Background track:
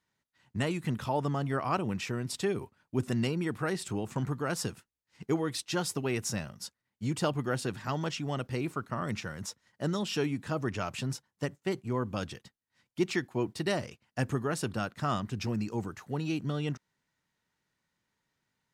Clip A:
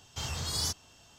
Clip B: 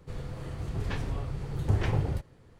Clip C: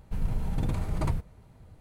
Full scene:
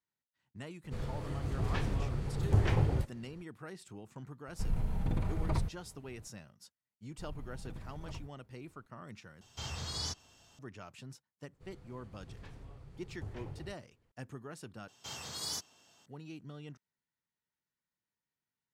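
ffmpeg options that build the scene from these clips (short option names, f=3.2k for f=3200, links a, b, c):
-filter_complex "[2:a]asplit=2[a][b];[3:a]asplit=2[c][d];[1:a]asplit=2[e][f];[0:a]volume=-15dB[g];[c]acrossover=split=3700[h][i];[i]acompressor=threshold=-59dB:ratio=4:attack=1:release=60[j];[h][j]amix=inputs=2:normalize=0[k];[d]equalizer=f=7.8k:t=o:w=0.77:g=-2.5[l];[e]acrossover=split=7100[m][n];[n]acompressor=threshold=-56dB:ratio=4:attack=1:release=60[o];[m][o]amix=inputs=2:normalize=0[p];[f]highpass=180[q];[g]asplit=3[r][s][t];[r]atrim=end=9.414[u];[p]atrim=end=1.18,asetpts=PTS-STARTPTS,volume=-4.5dB[v];[s]atrim=start=10.586:end=14.884[w];[q]atrim=end=1.18,asetpts=PTS-STARTPTS,volume=-6dB[x];[t]atrim=start=16.056[y];[a]atrim=end=2.59,asetpts=PTS-STARTPTS,volume=-1dB,afade=t=in:d=0.004:c=hsin,afade=t=out:st=2.586:d=0.004:c=hsin,adelay=840[z];[k]atrim=end=1.8,asetpts=PTS-STARTPTS,volume=-4dB,afade=t=in:d=0.004:c=hsin,afade=t=out:st=1.796:d=0.004:c=hsin,adelay=4480[aa];[l]atrim=end=1.8,asetpts=PTS-STARTPTS,volume=-17.5dB,afade=t=in:d=0.004:c=hsin,afade=t=out:st=1.796:d=0.004:c=hsin,adelay=7070[ab];[b]atrim=end=2.59,asetpts=PTS-STARTPTS,volume=-18dB,afade=t=in:d=0.004:c=hsin,afade=t=out:st=2.586:d=0.004:c=hsin,adelay=11530[ac];[u][v]acrossfade=d=0.004:c1=hsin:c2=hsin[ad];[ad][w]acrossfade=d=0.004:c1=hsin:c2=hsin[ae];[ae][x]acrossfade=d=0.004:c1=hsin:c2=hsin[af];[af][y]acrossfade=d=0.004:c1=hsin:c2=hsin[ag];[ag][z][aa][ab][ac]amix=inputs=5:normalize=0"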